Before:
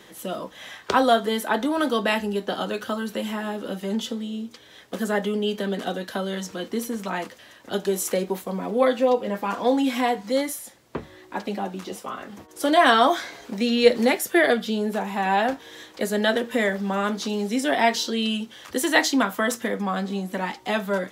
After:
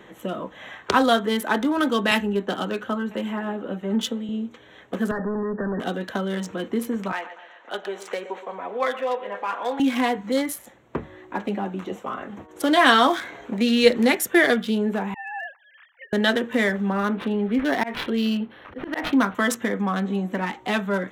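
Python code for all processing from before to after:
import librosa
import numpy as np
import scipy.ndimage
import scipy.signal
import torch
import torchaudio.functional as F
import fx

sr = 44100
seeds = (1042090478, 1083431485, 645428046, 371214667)

y = fx.chain(x, sr, fx.echo_single(ms=1000, db=-23.0),
    fx.band_widen(depth_pct=70), at=(2.11, 4.29))
y = fx.chain(y, sr, fx.clip_hard(threshold_db=-26.5),
    fx.brickwall_lowpass(high_hz=1900.0),
    fx.band_squash(depth_pct=100), at=(5.11, 5.8))
y = fx.chain(y, sr, fx.bandpass_edges(low_hz=660.0, high_hz=4800.0),
    fx.echo_feedback(ms=120, feedback_pct=52, wet_db=-14), at=(7.12, 9.8))
y = fx.chain(y, sr, fx.sine_speech(),
    fx.ladder_highpass(hz=1100.0, resonance_pct=20),
    fx.high_shelf(hz=2000.0, db=-2.5), at=(15.14, 16.13))
y = fx.chain(y, sr, fx.high_shelf(hz=9600.0, db=-10.0),
    fx.auto_swell(attack_ms=144.0),
    fx.resample_linear(factor=6), at=(16.9, 19.35))
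y = fx.wiener(y, sr, points=9)
y = fx.dynamic_eq(y, sr, hz=640.0, q=1.3, threshold_db=-34.0, ratio=4.0, max_db=-6)
y = y * librosa.db_to_amplitude(3.5)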